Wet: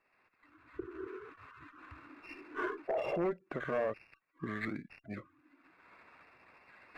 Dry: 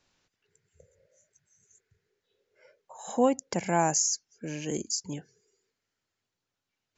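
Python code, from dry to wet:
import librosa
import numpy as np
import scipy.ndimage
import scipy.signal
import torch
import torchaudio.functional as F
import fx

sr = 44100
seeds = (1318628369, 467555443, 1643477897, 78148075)

y = fx.pitch_heads(x, sr, semitones=-6.0)
y = fx.recorder_agc(y, sr, target_db=-22.0, rise_db_per_s=33.0, max_gain_db=30)
y = fx.highpass(y, sr, hz=620.0, slope=6)
y = fx.spec_gate(y, sr, threshold_db=-30, keep='strong')
y = np.clip(10.0 ** (29.0 / 20.0) * y, -1.0, 1.0) / 10.0 ** (29.0 / 20.0)
y = fx.brickwall_lowpass(y, sr, high_hz=2800.0)
y = fx.running_max(y, sr, window=3)
y = y * librosa.db_to_amplitude(1.0)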